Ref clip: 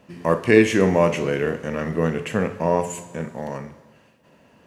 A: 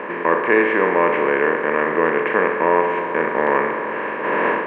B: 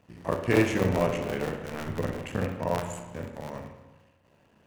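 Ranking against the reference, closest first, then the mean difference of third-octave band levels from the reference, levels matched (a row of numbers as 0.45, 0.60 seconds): B, A; 5.5, 10.0 decibels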